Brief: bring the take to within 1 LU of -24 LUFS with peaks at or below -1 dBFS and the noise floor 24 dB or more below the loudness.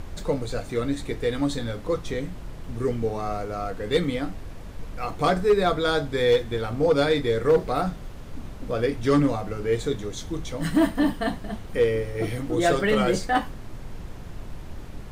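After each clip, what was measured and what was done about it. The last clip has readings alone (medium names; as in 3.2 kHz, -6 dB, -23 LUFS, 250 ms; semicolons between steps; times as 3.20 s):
clipped samples 0.3%; clipping level -12.5 dBFS; noise floor -38 dBFS; noise floor target -49 dBFS; loudness -25.0 LUFS; peak level -12.5 dBFS; loudness target -24.0 LUFS
-> clip repair -12.5 dBFS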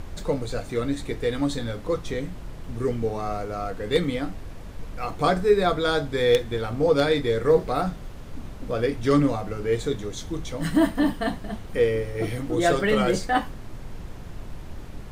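clipped samples 0.0%; noise floor -38 dBFS; noise floor target -49 dBFS
-> noise print and reduce 11 dB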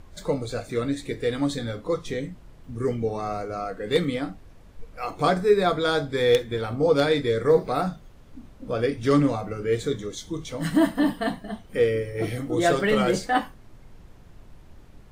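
noise floor -48 dBFS; noise floor target -49 dBFS
-> noise print and reduce 6 dB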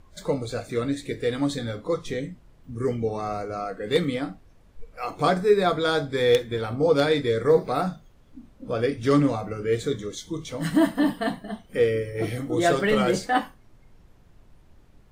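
noise floor -54 dBFS; loudness -25.0 LUFS; peak level -4.5 dBFS; loudness target -24.0 LUFS
-> trim +1 dB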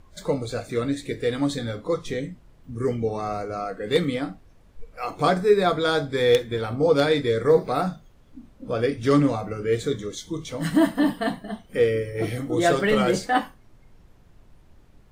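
loudness -24.0 LUFS; peak level -3.5 dBFS; noise floor -53 dBFS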